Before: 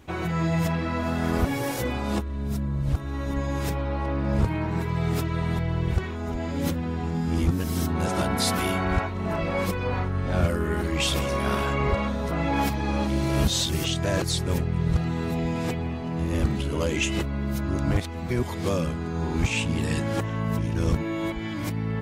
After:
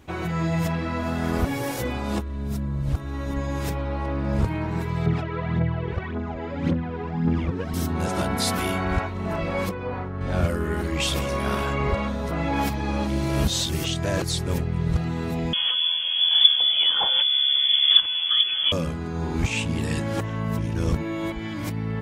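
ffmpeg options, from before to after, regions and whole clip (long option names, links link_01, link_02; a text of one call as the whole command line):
ffmpeg -i in.wav -filter_complex "[0:a]asettb=1/sr,asplit=3[link_01][link_02][link_03];[link_01]atrim=end=5.064[link_04];[link_02]atrim=start=5.06:end=7.74,asetpts=PTS-STARTPTS,afade=type=in:duration=0.004:curve=qsin,afade=type=out:start_time=2.676:duration=0.004:curve=qsin,aphaser=in_gain=1:out_gain=1:delay=2.5:decay=0.61:speed=1.8:type=triangular,highpass=110,lowpass=2500[link_05];[link_03]atrim=start=7.736[link_06];[link_04][link_05]acrossfade=duration=0.004:curve1=hsin:curve2=qsin[link_07];[link_07][link_06]acrossfade=duration=0.004:curve1=qsin:curve2=hsin,asettb=1/sr,asplit=3[link_08][link_09][link_10];[link_08]atrim=end=9.694[link_11];[link_09]atrim=start=9.69:end=10.21,asetpts=PTS-STARTPTS,afade=type=in:duration=0.004:curve=qsin,afade=type=out:start_time=0.516:duration=0.004:curve=qsin,lowpass=frequency=1300:poles=1,lowshelf=frequency=100:gain=-11[link_12];[link_10]atrim=start=10.206[link_13];[link_11][link_12]acrossfade=duration=0.004:curve1=hsin:curve2=qsin[link_14];[link_14][link_13]acrossfade=duration=0.004:curve1=qsin:curve2=hsin,asettb=1/sr,asplit=3[link_15][link_16][link_17];[link_15]atrim=end=15.534[link_18];[link_16]atrim=start=15.53:end=18.72,asetpts=PTS-STARTPTS,afade=type=in:duration=0.004:curve=qsin,afade=type=out:start_time=3.186:duration=0.004:curve=qsin,lowshelf=frequency=120:gain=11.5,acompressor=mode=upward:threshold=-21dB:ratio=2.5:attack=3.2:release=140:knee=2.83:detection=peak,lowpass=frequency=3000:width_type=q:width=0.5098,lowpass=frequency=3000:width_type=q:width=0.6013,lowpass=frequency=3000:width_type=q:width=0.9,lowpass=frequency=3000:width_type=q:width=2.563,afreqshift=-3500[link_19];[link_17]atrim=start=18.716[link_20];[link_18][link_19]acrossfade=duration=0.004:curve1=hsin:curve2=qsin[link_21];[link_21][link_20]acrossfade=duration=0.004:curve1=qsin:curve2=hsin" out.wav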